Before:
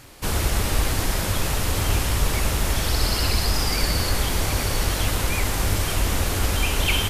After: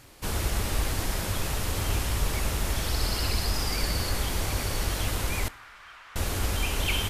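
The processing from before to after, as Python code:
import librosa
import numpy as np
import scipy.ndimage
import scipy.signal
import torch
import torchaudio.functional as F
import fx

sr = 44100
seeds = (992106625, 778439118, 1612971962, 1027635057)

y = fx.ladder_bandpass(x, sr, hz=1600.0, resonance_pct=40, at=(5.48, 6.16))
y = fx.rev_double_slope(y, sr, seeds[0], early_s=0.55, late_s=4.3, knee_db=-20, drr_db=18.0)
y = F.gain(torch.from_numpy(y), -6.0).numpy()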